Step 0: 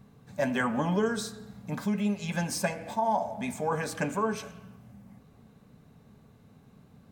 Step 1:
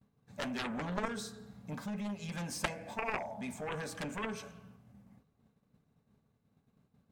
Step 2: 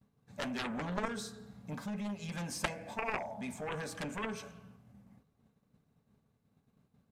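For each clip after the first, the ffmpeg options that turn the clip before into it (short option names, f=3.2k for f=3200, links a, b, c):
-af "highshelf=f=12k:g=-4.5,agate=range=-33dB:threshold=-47dB:ratio=3:detection=peak,aeval=exprs='0.188*(cos(1*acos(clip(val(0)/0.188,-1,1)))-cos(1*PI/2))+0.0944*(cos(3*acos(clip(val(0)/0.188,-1,1)))-cos(3*PI/2))':c=same"
-af "aresample=32000,aresample=44100"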